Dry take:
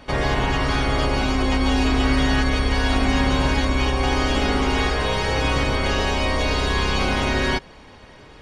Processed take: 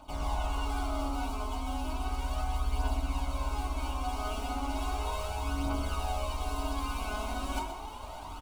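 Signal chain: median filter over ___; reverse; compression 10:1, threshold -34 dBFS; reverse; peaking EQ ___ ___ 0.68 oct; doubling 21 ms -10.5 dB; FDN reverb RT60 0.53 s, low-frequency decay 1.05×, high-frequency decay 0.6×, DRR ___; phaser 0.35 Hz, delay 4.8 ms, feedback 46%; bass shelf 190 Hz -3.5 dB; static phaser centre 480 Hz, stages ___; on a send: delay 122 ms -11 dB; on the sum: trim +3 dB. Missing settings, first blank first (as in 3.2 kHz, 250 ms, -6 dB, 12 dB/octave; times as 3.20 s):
9 samples, 300 Hz, -13 dB, -2.5 dB, 6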